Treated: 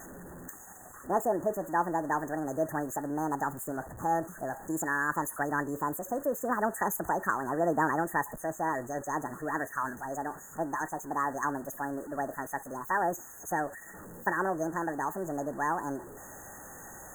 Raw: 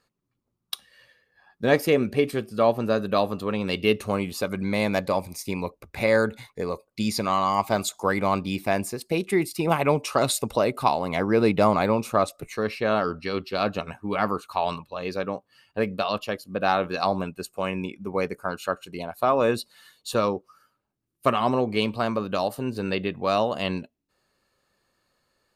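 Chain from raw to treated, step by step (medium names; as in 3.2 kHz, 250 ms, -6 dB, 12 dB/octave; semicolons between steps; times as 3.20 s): jump at every zero crossing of -31 dBFS; brick-wall FIR band-stop 1.3–4.2 kHz; wide varispeed 1.49×; trim -8 dB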